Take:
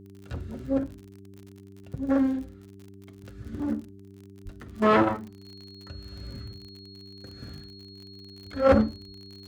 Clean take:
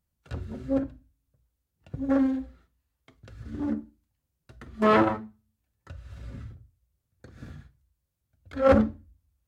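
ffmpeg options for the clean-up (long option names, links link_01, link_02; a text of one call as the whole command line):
ffmpeg -i in.wav -filter_complex "[0:a]adeclick=threshold=4,bandreject=frequency=98.1:width_type=h:width=4,bandreject=frequency=196.2:width_type=h:width=4,bandreject=frequency=294.3:width_type=h:width=4,bandreject=frequency=392.4:width_type=h:width=4,bandreject=frequency=4300:width=30,asplit=3[link_01][link_02][link_03];[link_01]afade=type=out:start_time=4.44:duration=0.02[link_04];[link_02]highpass=frequency=140:width=0.5412,highpass=frequency=140:width=1.3066,afade=type=in:start_time=4.44:duration=0.02,afade=type=out:start_time=4.56:duration=0.02[link_05];[link_03]afade=type=in:start_time=4.56:duration=0.02[link_06];[link_04][link_05][link_06]amix=inputs=3:normalize=0" out.wav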